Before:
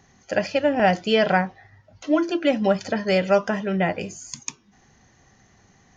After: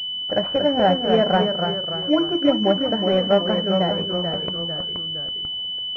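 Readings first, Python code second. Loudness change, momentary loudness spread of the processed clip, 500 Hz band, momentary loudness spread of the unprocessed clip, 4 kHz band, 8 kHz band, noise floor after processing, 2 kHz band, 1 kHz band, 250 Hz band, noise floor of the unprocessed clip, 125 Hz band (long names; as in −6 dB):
+1.5 dB, 7 LU, +2.0 dB, 14 LU, +14.0 dB, can't be measured, −28 dBFS, −6.0 dB, +1.5 dB, +2.5 dB, −59 dBFS, +3.0 dB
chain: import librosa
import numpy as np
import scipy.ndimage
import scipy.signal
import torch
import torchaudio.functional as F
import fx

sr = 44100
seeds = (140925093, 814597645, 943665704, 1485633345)

y = fx.echo_pitch(x, sr, ms=209, semitones=-1, count=3, db_per_echo=-6.0)
y = fx.quant_dither(y, sr, seeds[0], bits=10, dither='none')
y = fx.pwm(y, sr, carrier_hz=3000.0)
y = F.gain(torch.from_numpy(y), 1.0).numpy()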